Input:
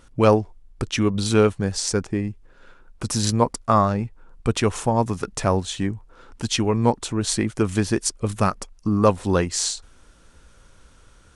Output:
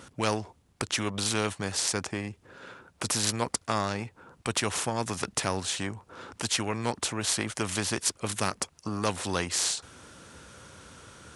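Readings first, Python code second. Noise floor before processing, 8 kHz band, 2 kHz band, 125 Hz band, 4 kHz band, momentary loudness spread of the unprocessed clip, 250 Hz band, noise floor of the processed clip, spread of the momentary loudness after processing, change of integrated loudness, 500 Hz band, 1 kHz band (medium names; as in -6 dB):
-52 dBFS, -1.5 dB, -1.0 dB, -12.0 dB, -1.5 dB, 10 LU, -11.5 dB, -64 dBFS, 21 LU, -7.5 dB, -12.0 dB, -8.5 dB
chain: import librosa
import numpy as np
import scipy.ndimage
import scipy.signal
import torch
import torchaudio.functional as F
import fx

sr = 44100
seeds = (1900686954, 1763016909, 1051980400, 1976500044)

y = scipy.signal.sosfilt(scipy.signal.butter(4, 84.0, 'highpass', fs=sr, output='sos'), x)
y = fx.spectral_comp(y, sr, ratio=2.0)
y = y * librosa.db_to_amplitude(-6.5)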